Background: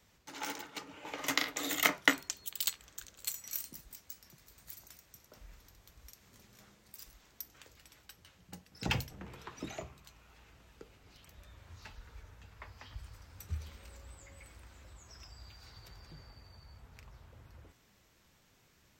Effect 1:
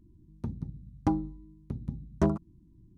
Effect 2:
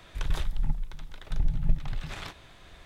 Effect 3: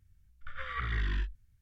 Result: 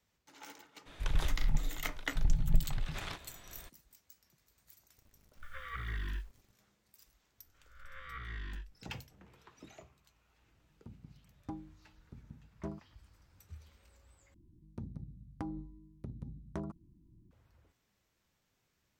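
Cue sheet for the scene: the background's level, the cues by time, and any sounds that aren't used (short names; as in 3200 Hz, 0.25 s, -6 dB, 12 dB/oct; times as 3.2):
background -11.5 dB
0.85 add 2 -2.5 dB, fades 0.02 s
4.96 add 3 -6.5 dB + bit-crush 10-bit
7.38 add 3 -12 dB + spectral swells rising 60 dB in 0.70 s
10.42 add 1 -16.5 dB
14.34 replace with 1 -5 dB + compressor, threshold -31 dBFS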